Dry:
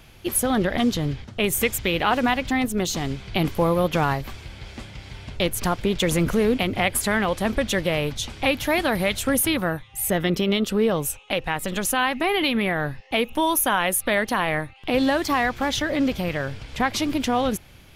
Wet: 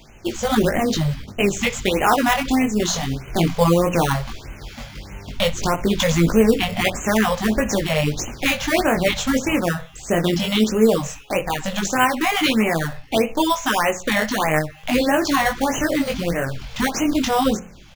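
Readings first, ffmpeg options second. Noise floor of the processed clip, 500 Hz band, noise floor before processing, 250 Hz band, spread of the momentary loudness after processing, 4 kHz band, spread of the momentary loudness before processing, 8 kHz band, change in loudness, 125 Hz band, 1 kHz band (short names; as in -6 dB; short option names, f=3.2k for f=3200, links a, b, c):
-42 dBFS, +3.5 dB, -48 dBFS, +4.0 dB, 8 LU, +2.5 dB, 7 LU, +0.5 dB, +3.0 dB, +4.0 dB, +3.0 dB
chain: -filter_complex "[0:a]equalizer=f=95:t=o:w=0.52:g=-7.5,bandreject=f=60:t=h:w=6,bandreject=f=120:t=h:w=6,bandreject=f=180:t=h:w=6,flanger=delay=18:depth=5.4:speed=0.15,aresample=16000,aresample=44100,asplit=2[a][b];[b]acrusher=samples=14:mix=1:aa=0.000001:lfo=1:lforange=8.4:lforate=0.79,volume=-7dB[c];[a][c]amix=inputs=2:normalize=0,highshelf=f=4.4k:g=6,asplit=2[d][e];[e]adelay=60,lowpass=f=4.3k:p=1,volume=-16dB,asplit=2[f][g];[g]adelay=60,lowpass=f=4.3k:p=1,volume=0.39,asplit=2[h][i];[i]adelay=60,lowpass=f=4.3k:p=1,volume=0.39[j];[f][h][j]amix=inputs=3:normalize=0[k];[d][k]amix=inputs=2:normalize=0,afftfilt=real='re*(1-between(b*sr/1024,300*pow(4400/300,0.5+0.5*sin(2*PI*1.6*pts/sr))/1.41,300*pow(4400/300,0.5+0.5*sin(2*PI*1.6*pts/sr))*1.41))':imag='im*(1-between(b*sr/1024,300*pow(4400/300,0.5+0.5*sin(2*PI*1.6*pts/sr))/1.41,300*pow(4400/300,0.5+0.5*sin(2*PI*1.6*pts/sr))*1.41))':win_size=1024:overlap=0.75,volume=4.5dB"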